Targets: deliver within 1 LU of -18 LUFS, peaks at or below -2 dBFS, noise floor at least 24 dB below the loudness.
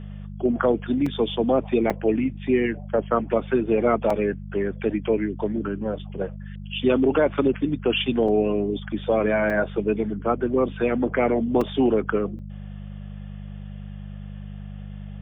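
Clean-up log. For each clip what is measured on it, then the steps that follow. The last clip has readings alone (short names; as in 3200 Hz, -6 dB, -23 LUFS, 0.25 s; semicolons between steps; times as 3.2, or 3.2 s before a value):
dropouts 7; longest dropout 4.0 ms; hum 50 Hz; harmonics up to 200 Hz; hum level -34 dBFS; loudness -23.5 LUFS; peak -7.5 dBFS; loudness target -18.0 LUFS
-> interpolate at 1.06/1.9/4.1/8.28/9.5/11.61/12.39, 4 ms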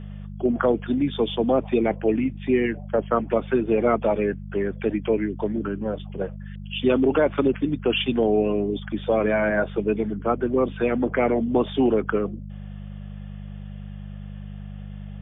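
dropouts 0; hum 50 Hz; harmonics up to 200 Hz; hum level -34 dBFS
-> de-hum 50 Hz, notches 4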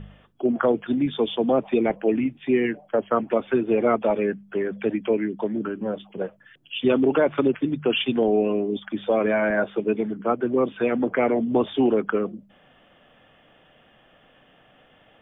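hum none; loudness -23.5 LUFS; peak -8.0 dBFS; loudness target -18.0 LUFS
-> gain +5.5 dB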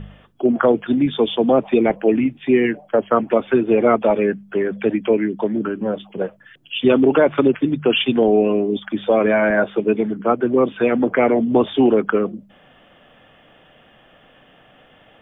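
loudness -18.0 LUFS; peak -2.5 dBFS; noise floor -52 dBFS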